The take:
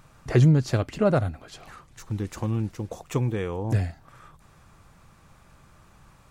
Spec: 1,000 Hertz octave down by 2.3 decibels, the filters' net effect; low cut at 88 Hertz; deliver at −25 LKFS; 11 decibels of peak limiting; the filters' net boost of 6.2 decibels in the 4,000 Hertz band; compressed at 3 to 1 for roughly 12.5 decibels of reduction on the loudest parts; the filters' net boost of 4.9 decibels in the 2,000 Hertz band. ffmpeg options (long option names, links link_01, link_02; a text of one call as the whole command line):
ffmpeg -i in.wav -af "highpass=88,equalizer=frequency=1000:width_type=o:gain=-6,equalizer=frequency=2000:width_type=o:gain=7,equalizer=frequency=4000:width_type=o:gain=6,acompressor=threshold=-31dB:ratio=3,volume=12dB,alimiter=limit=-13dB:level=0:latency=1" out.wav